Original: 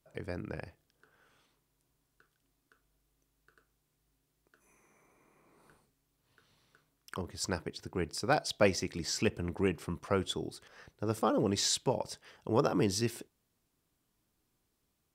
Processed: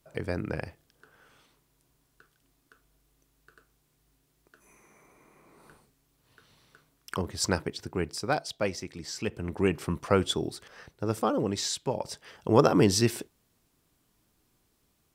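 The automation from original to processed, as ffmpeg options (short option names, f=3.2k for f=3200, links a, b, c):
-af "volume=27.5dB,afade=t=out:st=7.5:d=1.07:silence=0.298538,afade=t=in:st=9.22:d=0.64:silence=0.316228,afade=t=out:st=10.45:d=1.33:silence=0.354813,afade=t=in:st=11.78:d=0.7:silence=0.316228"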